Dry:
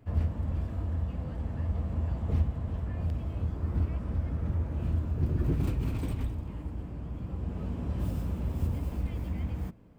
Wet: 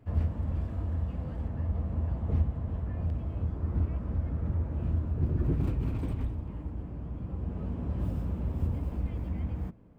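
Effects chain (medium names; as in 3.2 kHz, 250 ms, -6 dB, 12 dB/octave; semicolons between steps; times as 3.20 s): treble shelf 2.8 kHz -5 dB, from 1.48 s -11.5 dB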